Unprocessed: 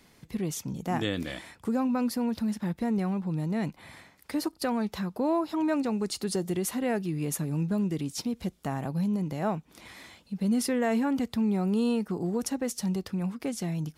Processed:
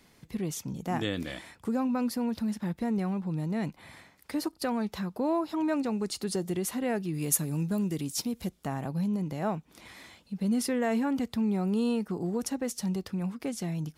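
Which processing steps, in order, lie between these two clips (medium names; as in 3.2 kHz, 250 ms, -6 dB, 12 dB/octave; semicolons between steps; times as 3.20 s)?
7.13–8.48 s: treble shelf 4.4 kHz -> 8.4 kHz +11.5 dB; trim -1.5 dB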